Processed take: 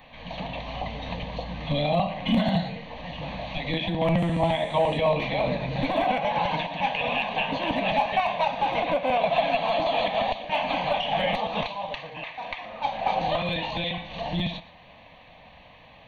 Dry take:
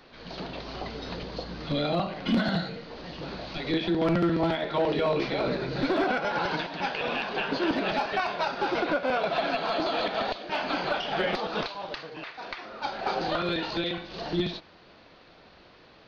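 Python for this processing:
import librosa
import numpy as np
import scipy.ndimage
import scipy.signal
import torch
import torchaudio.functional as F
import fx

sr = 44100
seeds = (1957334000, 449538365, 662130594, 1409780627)

p1 = fx.dmg_buzz(x, sr, base_hz=400.0, harmonics=24, level_db=-52.0, tilt_db=-4, odd_only=False, at=(4.17, 4.97), fade=0.02)
p2 = fx.fixed_phaser(p1, sr, hz=1400.0, stages=6)
p3 = fx.dynamic_eq(p2, sr, hz=1600.0, q=1.3, threshold_db=-46.0, ratio=4.0, max_db=-4)
p4 = p3 + fx.echo_single(p3, sr, ms=117, db=-18.5, dry=0)
y = F.gain(torch.from_numpy(p4), 7.0).numpy()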